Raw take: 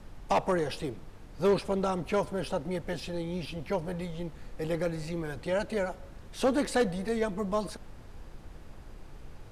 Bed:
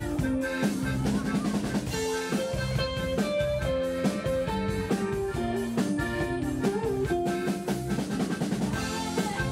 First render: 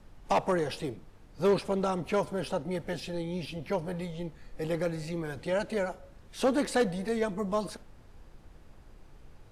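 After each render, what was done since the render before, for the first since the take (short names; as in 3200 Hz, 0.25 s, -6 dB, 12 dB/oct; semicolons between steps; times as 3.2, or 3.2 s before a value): noise print and reduce 6 dB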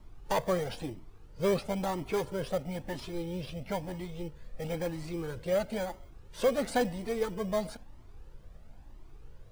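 in parallel at -6 dB: sample-rate reducer 2700 Hz, jitter 0%; on the sum: cascading flanger rising 1 Hz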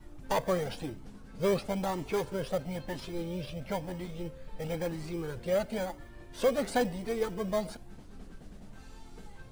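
add bed -24.5 dB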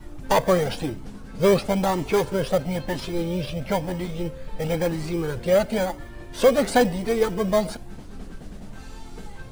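gain +10 dB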